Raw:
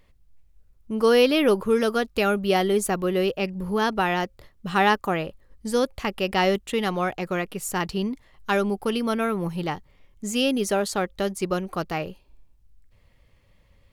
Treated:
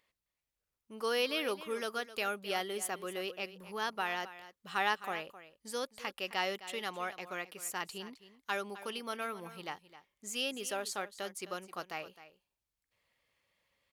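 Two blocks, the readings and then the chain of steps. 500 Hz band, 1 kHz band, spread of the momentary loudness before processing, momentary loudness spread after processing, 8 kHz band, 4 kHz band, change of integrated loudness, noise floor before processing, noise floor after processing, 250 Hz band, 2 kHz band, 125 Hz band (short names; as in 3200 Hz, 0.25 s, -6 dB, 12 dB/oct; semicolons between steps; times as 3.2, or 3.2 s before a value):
-16.0 dB, -12.0 dB, 10 LU, 12 LU, -8.0 dB, -8.5 dB, -13.0 dB, -59 dBFS, under -85 dBFS, -21.0 dB, -9.0 dB, -23.5 dB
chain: HPF 1100 Hz 6 dB/oct; echo 0.261 s -15 dB; gain -8 dB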